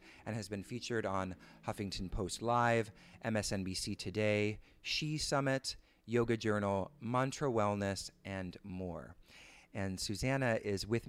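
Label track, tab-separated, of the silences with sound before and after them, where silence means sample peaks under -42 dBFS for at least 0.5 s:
9.040000	9.760000	silence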